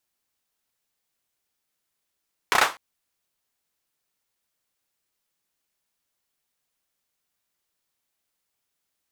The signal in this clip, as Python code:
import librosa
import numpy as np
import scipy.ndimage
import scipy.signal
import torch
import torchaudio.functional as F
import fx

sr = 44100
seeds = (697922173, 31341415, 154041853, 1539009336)

y = fx.drum_clap(sr, seeds[0], length_s=0.25, bursts=4, spacing_ms=31, hz=1100.0, decay_s=0.26)